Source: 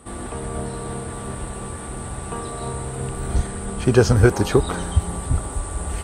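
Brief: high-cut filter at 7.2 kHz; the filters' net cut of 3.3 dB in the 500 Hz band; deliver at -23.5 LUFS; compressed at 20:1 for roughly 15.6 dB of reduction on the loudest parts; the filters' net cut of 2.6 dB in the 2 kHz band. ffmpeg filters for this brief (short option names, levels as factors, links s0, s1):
-af "lowpass=7200,equalizer=f=500:t=o:g=-4.5,equalizer=f=2000:t=o:g=-3.5,acompressor=threshold=0.0562:ratio=20,volume=2.82"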